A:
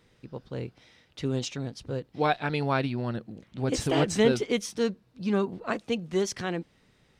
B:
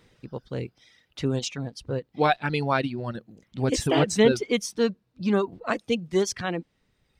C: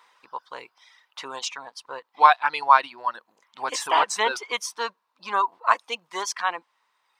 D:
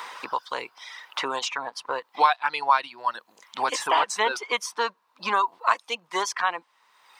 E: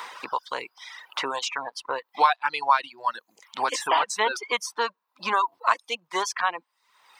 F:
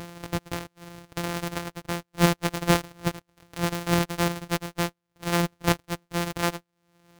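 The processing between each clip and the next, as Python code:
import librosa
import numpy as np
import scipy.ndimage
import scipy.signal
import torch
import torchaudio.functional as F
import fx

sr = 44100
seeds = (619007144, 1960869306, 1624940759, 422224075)

y1 = fx.dereverb_blind(x, sr, rt60_s=1.4)
y1 = y1 * 10.0 ** (4.0 / 20.0)
y2 = fx.highpass_res(y1, sr, hz=1000.0, q=6.3)
y2 = y2 * 10.0 ** (1.0 / 20.0)
y3 = fx.band_squash(y2, sr, depth_pct=70)
y4 = fx.dereverb_blind(y3, sr, rt60_s=0.54)
y5 = np.r_[np.sort(y4[:len(y4) // 256 * 256].reshape(-1, 256), axis=1).ravel(), y4[len(y4) // 256 * 256:]]
y5 = y5 * 10.0 ** (-1.0 / 20.0)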